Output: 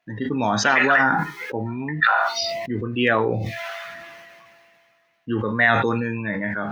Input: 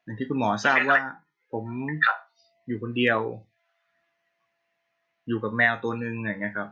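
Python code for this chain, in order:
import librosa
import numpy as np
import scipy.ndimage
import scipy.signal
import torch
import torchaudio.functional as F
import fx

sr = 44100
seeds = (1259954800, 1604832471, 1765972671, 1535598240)

y = fx.sustainer(x, sr, db_per_s=24.0)
y = F.gain(torch.from_numpy(y), 2.0).numpy()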